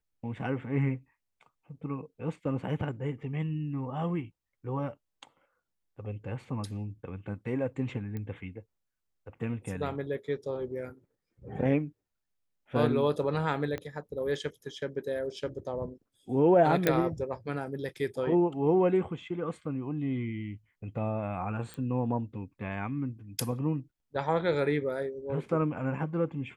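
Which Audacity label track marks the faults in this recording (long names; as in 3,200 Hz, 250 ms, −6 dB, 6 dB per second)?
8.170000	8.170000	click −26 dBFS
13.780000	13.780000	click −23 dBFS
16.870000	16.870000	click −10 dBFS
21.740000	21.740000	click −26 dBFS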